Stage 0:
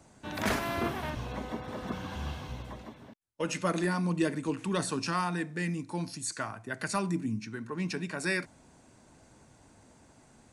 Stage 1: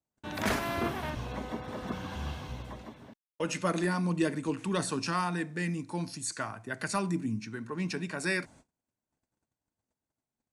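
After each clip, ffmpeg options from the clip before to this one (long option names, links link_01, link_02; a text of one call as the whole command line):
ffmpeg -i in.wav -af "agate=range=-34dB:threshold=-53dB:ratio=16:detection=peak" out.wav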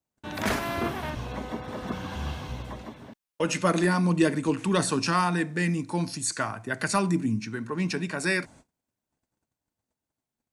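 ffmpeg -i in.wav -af "dynaudnorm=framelen=250:gausssize=21:maxgain=4dB,volume=2.5dB" out.wav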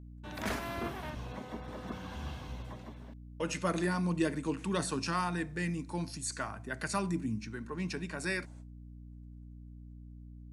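ffmpeg -i in.wav -af "aeval=exprs='val(0)+0.0112*(sin(2*PI*60*n/s)+sin(2*PI*2*60*n/s)/2+sin(2*PI*3*60*n/s)/3+sin(2*PI*4*60*n/s)/4+sin(2*PI*5*60*n/s)/5)':channel_layout=same,volume=-8.5dB" out.wav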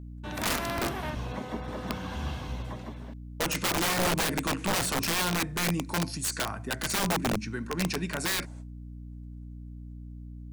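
ffmpeg -i in.wav -af "aeval=exprs='(mod(26.6*val(0)+1,2)-1)/26.6':channel_layout=same,volume=7dB" out.wav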